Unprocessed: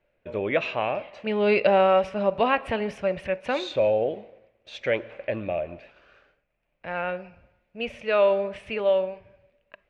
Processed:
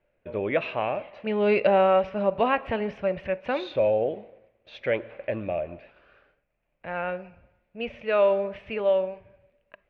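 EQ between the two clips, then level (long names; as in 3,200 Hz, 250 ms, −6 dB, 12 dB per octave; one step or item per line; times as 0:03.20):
high-frequency loss of the air 220 metres
0.0 dB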